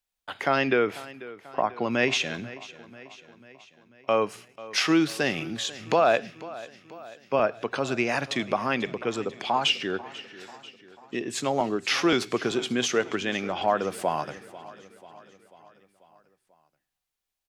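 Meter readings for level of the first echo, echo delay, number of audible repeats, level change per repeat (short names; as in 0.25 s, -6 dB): -18.0 dB, 0.491 s, 4, -5.0 dB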